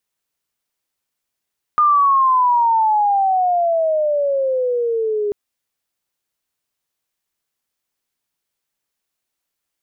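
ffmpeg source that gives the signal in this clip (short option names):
-f lavfi -i "aevalsrc='pow(10,(-10-7*t/3.54)/20)*sin(2*PI*1220*3.54/(-19*log(2)/12)*(exp(-19*log(2)/12*t/3.54)-1))':d=3.54:s=44100"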